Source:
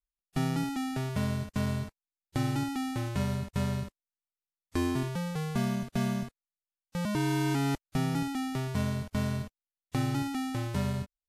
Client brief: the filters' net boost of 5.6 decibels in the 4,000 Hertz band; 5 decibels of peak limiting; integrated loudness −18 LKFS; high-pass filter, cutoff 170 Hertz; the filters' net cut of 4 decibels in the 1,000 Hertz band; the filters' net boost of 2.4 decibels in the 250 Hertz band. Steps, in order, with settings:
high-pass filter 170 Hz
parametric band 250 Hz +4.5 dB
parametric band 1,000 Hz −6 dB
parametric band 4,000 Hz +7.5 dB
level +15.5 dB
brickwall limiter −6 dBFS

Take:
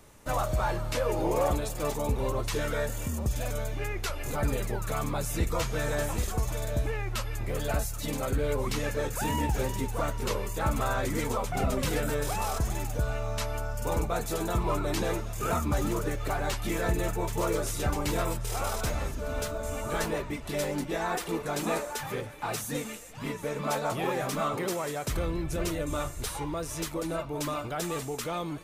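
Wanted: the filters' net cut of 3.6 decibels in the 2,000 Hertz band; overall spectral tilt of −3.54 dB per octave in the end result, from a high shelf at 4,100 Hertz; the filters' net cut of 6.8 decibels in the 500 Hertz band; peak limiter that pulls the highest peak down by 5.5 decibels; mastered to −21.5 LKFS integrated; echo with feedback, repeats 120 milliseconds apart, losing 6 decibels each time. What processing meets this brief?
parametric band 500 Hz −8.5 dB
parametric band 2,000 Hz −6 dB
high-shelf EQ 4,100 Hz +8 dB
brickwall limiter −21.5 dBFS
repeating echo 120 ms, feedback 50%, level −6 dB
level +10 dB

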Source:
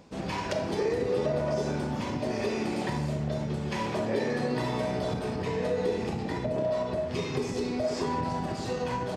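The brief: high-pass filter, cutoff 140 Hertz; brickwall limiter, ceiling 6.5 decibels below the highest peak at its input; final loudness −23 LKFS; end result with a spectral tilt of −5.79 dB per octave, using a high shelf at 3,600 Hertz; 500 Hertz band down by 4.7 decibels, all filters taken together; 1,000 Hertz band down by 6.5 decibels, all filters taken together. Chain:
high-pass filter 140 Hz
parametric band 500 Hz −4 dB
parametric band 1,000 Hz −6 dB
high-shelf EQ 3,600 Hz −7 dB
level +13 dB
brickwall limiter −13.5 dBFS

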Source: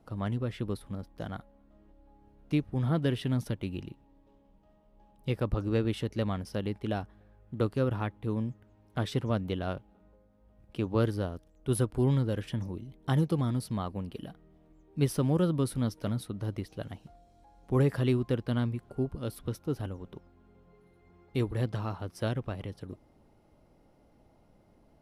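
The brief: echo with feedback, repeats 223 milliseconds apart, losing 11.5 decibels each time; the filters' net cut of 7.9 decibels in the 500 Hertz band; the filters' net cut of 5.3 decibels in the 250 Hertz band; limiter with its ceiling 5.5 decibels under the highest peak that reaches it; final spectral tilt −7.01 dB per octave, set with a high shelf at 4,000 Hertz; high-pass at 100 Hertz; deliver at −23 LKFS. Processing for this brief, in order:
high-pass filter 100 Hz
parametric band 250 Hz −4.5 dB
parametric band 500 Hz −8.5 dB
high-shelf EQ 4,000 Hz −7 dB
brickwall limiter −24.5 dBFS
repeating echo 223 ms, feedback 27%, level −11.5 dB
level +14.5 dB

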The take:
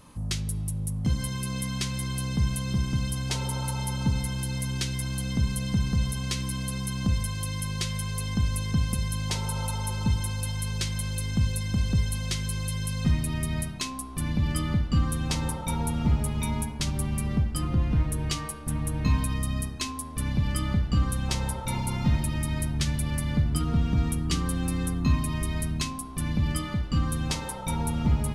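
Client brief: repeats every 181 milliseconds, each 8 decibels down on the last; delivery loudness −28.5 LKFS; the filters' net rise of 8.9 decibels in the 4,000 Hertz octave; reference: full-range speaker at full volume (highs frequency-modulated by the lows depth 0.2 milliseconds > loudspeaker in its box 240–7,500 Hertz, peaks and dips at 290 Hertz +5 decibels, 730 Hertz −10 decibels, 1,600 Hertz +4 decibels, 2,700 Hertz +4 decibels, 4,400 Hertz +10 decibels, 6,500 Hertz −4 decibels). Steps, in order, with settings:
parametric band 4,000 Hz +4.5 dB
repeating echo 181 ms, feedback 40%, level −8 dB
highs frequency-modulated by the lows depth 0.2 ms
loudspeaker in its box 240–7,500 Hz, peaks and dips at 290 Hz +5 dB, 730 Hz −10 dB, 1,600 Hz +4 dB, 2,700 Hz +4 dB, 4,400 Hz +10 dB, 6,500 Hz −4 dB
level +1 dB

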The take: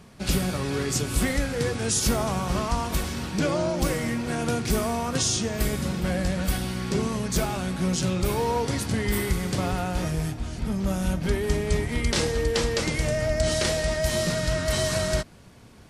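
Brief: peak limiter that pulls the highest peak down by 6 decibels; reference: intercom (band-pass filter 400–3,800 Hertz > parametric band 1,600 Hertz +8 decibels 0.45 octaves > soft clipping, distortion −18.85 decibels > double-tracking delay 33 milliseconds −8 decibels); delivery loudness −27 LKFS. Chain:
brickwall limiter −17 dBFS
band-pass filter 400–3,800 Hz
parametric band 1,600 Hz +8 dB 0.45 octaves
soft clipping −23 dBFS
double-tracking delay 33 ms −8 dB
level +4 dB

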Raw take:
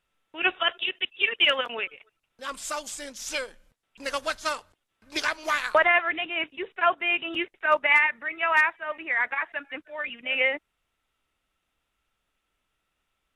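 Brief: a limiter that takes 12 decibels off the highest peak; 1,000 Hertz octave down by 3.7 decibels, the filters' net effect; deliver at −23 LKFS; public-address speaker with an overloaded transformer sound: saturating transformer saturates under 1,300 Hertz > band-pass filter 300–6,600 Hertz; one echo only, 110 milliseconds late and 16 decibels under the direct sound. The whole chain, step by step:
parametric band 1,000 Hz −5 dB
brickwall limiter −22 dBFS
single-tap delay 110 ms −16 dB
saturating transformer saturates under 1,300 Hz
band-pass filter 300–6,600 Hz
level +11 dB

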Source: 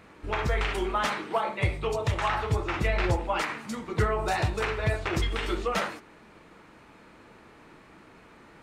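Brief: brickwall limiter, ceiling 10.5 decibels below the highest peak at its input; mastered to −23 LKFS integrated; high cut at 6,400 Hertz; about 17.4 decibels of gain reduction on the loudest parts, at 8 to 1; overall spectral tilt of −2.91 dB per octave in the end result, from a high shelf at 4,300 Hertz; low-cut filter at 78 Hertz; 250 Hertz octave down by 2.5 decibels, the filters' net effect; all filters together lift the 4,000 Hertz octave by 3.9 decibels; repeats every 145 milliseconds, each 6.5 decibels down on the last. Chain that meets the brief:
high-pass filter 78 Hz
low-pass filter 6,400 Hz
parametric band 250 Hz −4 dB
parametric band 4,000 Hz +9 dB
high-shelf EQ 4,300 Hz −6.5 dB
downward compressor 8 to 1, threshold −41 dBFS
brickwall limiter −38 dBFS
repeating echo 145 ms, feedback 47%, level −6.5 dB
level +24 dB

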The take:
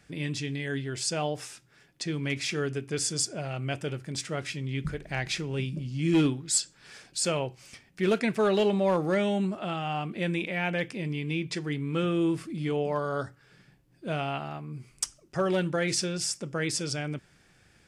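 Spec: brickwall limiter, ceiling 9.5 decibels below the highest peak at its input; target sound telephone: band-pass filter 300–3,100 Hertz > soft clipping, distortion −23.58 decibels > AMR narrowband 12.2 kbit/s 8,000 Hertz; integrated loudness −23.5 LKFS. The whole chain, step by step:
brickwall limiter −26.5 dBFS
band-pass filter 300–3,100 Hz
soft clipping −26.5 dBFS
level +17 dB
AMR narrowband 12.2 kbit/s 8,000 Hz

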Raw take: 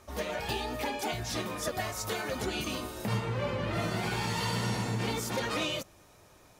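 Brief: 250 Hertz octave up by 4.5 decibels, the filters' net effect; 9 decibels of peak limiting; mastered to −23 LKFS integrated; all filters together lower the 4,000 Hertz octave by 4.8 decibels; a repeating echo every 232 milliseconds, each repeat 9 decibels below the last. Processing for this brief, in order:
parametric band 250 Hz +6 dB
parametric band 4,000 Hz −6.5 dB
brickwall limiter −28 dBFS
repeating echo 232 ms, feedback 35%, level −9 dB
level +13 dB

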